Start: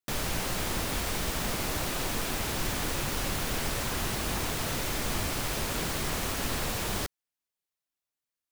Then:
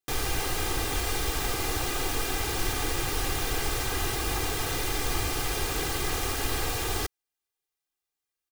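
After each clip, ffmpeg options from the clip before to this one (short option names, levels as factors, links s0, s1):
-af "aecho=1:1:2.5:0.74"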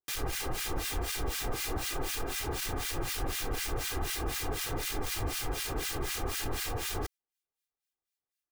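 -filter_complex "[0:a]aeval=exprs='0.075*(abs(mod(val(0)/0.075+3,4)-2)-1)':c=same,acrossover=split=1400[s0][s1];[s0]aeval=exprs='val(0)*(1-1/2+1/2*cos(2*PI*4*n/s))':c=same[s2];[s1]aeval=exprs='val(0)*(1-1/2-1/2*cos(2*PI*4*n/s))':c=same[s3];[s2][s3]amix=inputs=2:normalize=0"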